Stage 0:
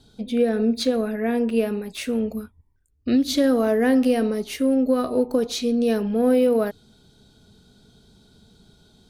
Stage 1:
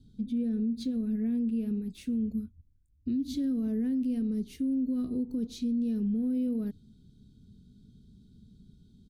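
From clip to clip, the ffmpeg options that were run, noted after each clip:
ffmpeg -i in.wav -af "firequalizer=gain_entry='entry(230,0);entry(600,-28);entry(3400,-17)':delay=0.05:min_phase=1,alimiter=level_in=0.5dB:limit=-24dB:level=0:latency=1:release=137,volume=-0.5dB" out.wav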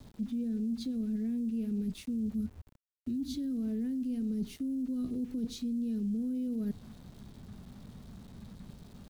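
ffmpeg -i in.wav -filter_complex "[0:a]areverse,acompressor=threshold=-38dB:ratio=6,areverse,aeval=exprs='val(0)*gte(abs(val(0)),0.00106)':channel_layout=same,acrossover=split=250|3000[link_01][link_02][link_03];[link_02]acompressor=threshold=-46dB:ratio=6[link_04];[link_01][link_04][link_03]amix=inputs=3:normalize=0,volume=7dB" out.wav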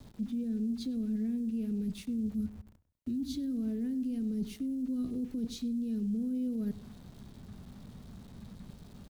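ffmpeg -i in.wav -filter_complex "[0:a]asplit=2[link_01][link_02];[link_02]adelay=99,lowpass=frequency=2100:poles=1,volume=-16dB,asplit=2[link_03][link_04];[link_04]adelay=99,lowpass=frequency=2100:poles=1,volume=0.37,asplit=2[link_05][link_06];[link_06]adelay=99,lowpass=frequency=2100:poles=1,volume=0.37[link_07];[link_01][link_03][link_05][link_07]amix=inputs=4:normalize=0" out.wav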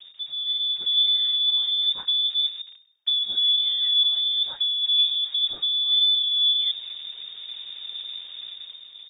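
ffmpeg -i in.wav -af "dynaudnorm=framelen=110:gausssize=11:maxgain=8dB,aphaser=in_gain=1:out_gain=1:delay=3.9:decay=0.31:speed=1:type=triangular,lowpass=frequency=3100:width_type=q:width=0.5098,lowpass=frequency=3100:width_type=q:width=0.6013,lowpass=frequency=3100:width_type=q:width=0.9,lowpass=frequency=3100:width_type=q:width=2.563,afreqshift=-3700,volume=3dB" out.wav

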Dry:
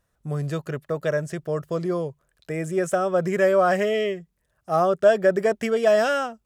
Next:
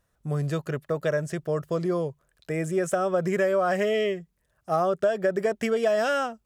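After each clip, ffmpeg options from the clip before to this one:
ffmpeg -i in.wav -af "acompressor=threshold=-20dB:ratio=6" out.wav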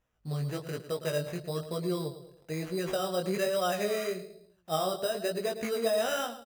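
ffmpeg -i in.wav -filter_complex "[0:a]asplit=2[link_01][link_02];[link_02]adelay=109,lowpass=frequency=1700:poles=1,volume=-11dB,asplit=2[link_03][link_04];[link_04]adelay=109,lowpass=frequency=1700:poles=1,volume=0.43,asplit=2[link_05][link_06];[link_06]adelay=109,lowpass=frequency=1700:poles=1,volume=0.43,asplit=2[link_07][link_08];[link_08]adelay=109,lowpass=frequency=1700:poles=1,volume=0.43[link_09];[link_03][link_05][link_07][link_09]amix=inputs=4:normalize=0[link_10];[link_01][link_10]amix=inputs=2:normalize=0,acrusher=samples=10:mix=1:aa=0.000001,flanger=delay=16.5:depth=5.9:speed=1.1,volume=-3.5dB" out.wav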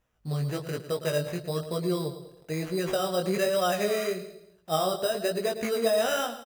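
ffmpeg -i in.wav -af "aecho=1:1:194|388:0.1|0.022,volume=3.5dB" out.wav

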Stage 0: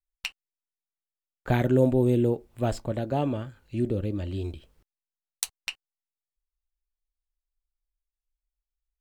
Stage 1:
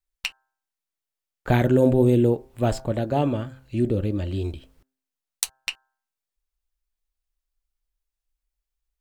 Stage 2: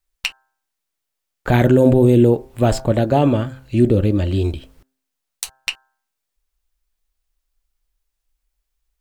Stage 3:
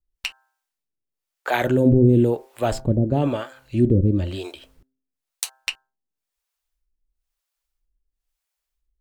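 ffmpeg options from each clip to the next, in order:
ffmpeg -i in.wav -af "bandreject=frequency=131.4:width_type=h:width=4,bandreject=frequency=262.8:width_type=h:width=4,bandreject=frequency=394.2:width_type=h:width=4,bandreject=frequency=525.6:width_type=h:width=4,bandreject=frequency=657:width_type=h:width=4,bandreject=frequency=788.4:width_type=h:width=4,bandreject=frequency=919.8:width_type=h:width=4,bandreject=frequency=1051.2:width_type=h:width=4,bandreject=frequency=1182.6:width_type=h:width=4,bandreject=frequency=1314:width_type=h:width=4,bandreject=frequency=1445.4:width_type=h:width=4,bandreject=frequency=1576.8:width_type=h:width=4,bandreject=frequency=1708.2:width_type=h:width=4,volume=4.5dB" out.wav
ffmpeg -i in.wav -af "alimiter=limit=-12dB:level=0:latency=1:release=53,volume=8.5dB" out.wav
ffmpeg -i in.wav -filter_complex "[0:a]acrossover=split=450[link_01][link_02];[link_01]aeval=exprs='val(0)*(1-1/2+1/2*cos(2*PI*1*n/s))':channel_layout=same[link_03];[link_02]aeval=exprs='val(0)*(1-1/2-1/2*cos(2*PI*1*n/s))':channel_layout=same[link_04];[link_03][link_04]amix=inputs=2:normalize=0" out.wav

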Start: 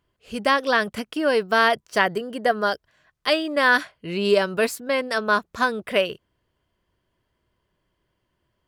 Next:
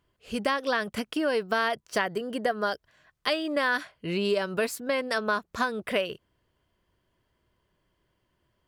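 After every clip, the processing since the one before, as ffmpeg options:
ffmpeg -i in.wav -af "acompressor=threshold=-25dB:ratio=3" out.wav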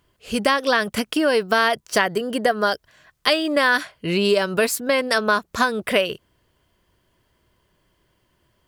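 ffmpeg -i in.wav -af "highshelf=frequency=4400:gain=5.5,volume=7.5dB" out.wav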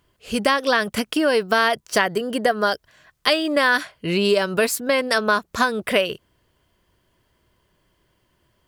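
ffmpeg -i in.wav -af anull out.wav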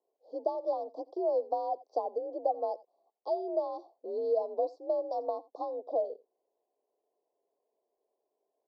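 ffmpeg -i in.wav -af "aecho=1:1:86:0.0841,highpass=frequency=340:width_type=q:width=0.5412,highpass=frequency=340:width_type=q:width=1.307,lowpass=frequency=3300:width_type=q:width=0.5176,lowpass=frequency=3300:width_type=q:width=0.7071,lowpass=frequency=3300:width_type=q:width=1.932,afreqshift=57,asuperstop=centerf=2100:order=12:qfactor=0.52,volume=-9dB" out.wav

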